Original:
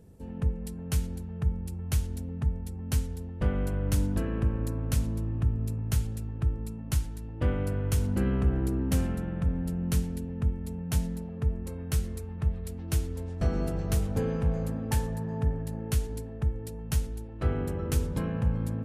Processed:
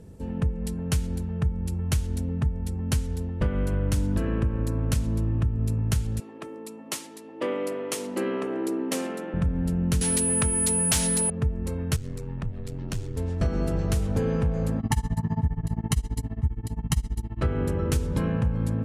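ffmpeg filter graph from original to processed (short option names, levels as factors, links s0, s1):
-filter_complex "[0:a]asettb=1/sr,asplit=3[s0][s1][s2];[s0]atrim=end=6.204[s3];[s1]atrim=start=6.2:end=9.34,asetpts=PTS-STARTPTS,afade=t=in:d=0.004:c=qsin,afade=t=out:st=3.136:d=0.004:c=qsin,highpass=f=300:w=0.5412,highpass=f=300:w=1.3066,bandreject=f=1500:w=7.4[s4];[s2]atrim=start=9.336[s5];[s3][s4]acrossfade=d=0.004:c1=hsin:c2=qsin[s6];[s6][s5]acrossfade=d=0.004:c1=qsin:c2=hsin,asettb=1/sr,asplit=3[s7][s8][s9];[s7]atrim=end=10.014[s10];[s8]atrim=start=10.01:end=11.3,asetpts=PTS-STARTPTS,afade=t=in:d=0.004:c=qsin,afade=t=out:st=1.286:d=0.004:c=qsin,highshelf=f=2700:g=10,aeval=exprs='val(0)+0.0158*sin(2*PI*9900*n/s)':c=same,asplit=2[s11][s12];[s12]highpass=f=720:p=1,volume=12.6,asoftclip=type=tanh:threshold=0.266[s13];[s11][s13]amix=inputs=2:normalize=0,lowpass=f=7900:p=1,volume=0.501[s14];[s9]atrim=start=11.296[s15];[s10][s14]acrossfade=d=0.004:c1=hsin:c2=qsin[s16];[s16][s15]acrossfade=d=0.004:c1=qsin:c2=hsin,asettb=1/sr,asplit=3[s17][s18][s19];[s17]atrim=end=11.964[s20];[s18]atrim=start=11.96:end=13.17,asetpts=PTS-STARTPTS,afade=t=in:d=0.004:c=qsin,afade=t=out:st=1.206:d=0.004:c=qsin,equalizer=f=11000:t=o:w=0.46:g=-7.5,acompressor=threshold=0.02:ratio=2.5:attack=3.2:release=140:knee=1:detection=peak,aeval=exprs='val(0)*sin(2*PI*45*n/s)':c=same[s21];[s19]atrim=start=13.166[s22];[s20][s21]acrossfade=d=0.004:c1=hsin:c2=qsin[s23];[s23][s22]acrossfade=d=0.004:c1=qsin:c2=hsin,asettb=1/sr,asplit=3[s24][s25][s26];[s24]atrim=end=14.794[s27];[s25]atrim=start=14.79:end=17.41,asetpts=PTS-STARTPTS,afade=t=in:d=0.004:c=qsin,afade=t=out:st=2.616:d=0.004:c=qsin,aecho=1:1:1:0.96,atrim=end_sample=115542,tremolo=f=15:d=0.95[s28];[s26]atrim=start=17.406[s29];[s27][s28]acrossfade=d=0.004:c1=hsin:c2=qsin[s30];[s30][s29]acrossfade=d=0.004:c1=qsin:c2=hsin,lowpass=11000,bandreject=f=740:w=12,acompressor=threshold=0.0398:ratio=6,volume=2.37"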